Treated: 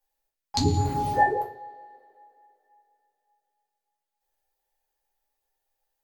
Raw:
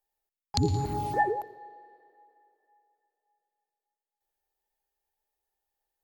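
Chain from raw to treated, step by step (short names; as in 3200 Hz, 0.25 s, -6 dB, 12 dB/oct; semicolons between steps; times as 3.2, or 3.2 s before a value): low shelf 450 Hz -6 dB; shoebox room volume 150 m³, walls furnished, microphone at 2.3 m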